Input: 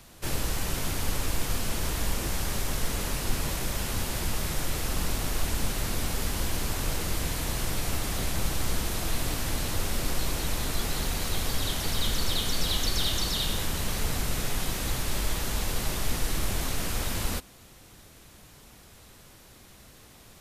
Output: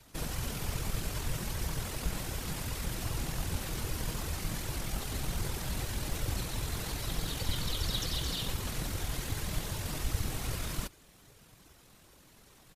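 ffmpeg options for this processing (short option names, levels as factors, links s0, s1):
-af "afftfilt=real='hypot(re,im)*cos(2*PI*random(0))':imag='hypot(re,im)*sin(2*PI*random(1))':win_size=512:overlap=0.75,flanger=delay=2:depth=4.5:regen=-40:speed=1.6:shape=sinusoidal,atempo=1.6,volume=1.58"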